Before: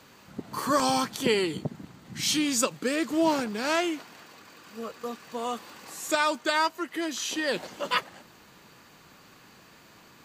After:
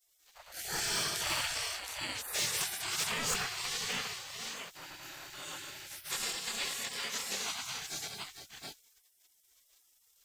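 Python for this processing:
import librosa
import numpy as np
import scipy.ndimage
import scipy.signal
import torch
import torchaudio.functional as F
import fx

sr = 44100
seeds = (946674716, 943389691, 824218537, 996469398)

p1 = fx.frame_reverse(x, sr, frame_ms=61.0)
p2 = p1 + fx.echo_multitap(p1, sr, ms=(66, 102, 111, 195, 451, 720), db=(-11.0, -6.0, -9.0, -5.5, -9.0, -4.0), dry=0)
p3 = fx.leveller(p2, sr, passes=1)
p4 = fx.spec_gate(p3, sr, threshold_db=-20, keep='weak')
p5 = (np.mod(10.0 ** (23.5 / 20.0) * p4 + 1.0, 2.0) - 1.0) / 10.0 ** (23.5 / 20.0)
p6 = p4 + F.gain(torch.from_numpy(p5), -10.5).numpy()
y = F.gain(torch.from_numpy(p6), -3.5).numpy()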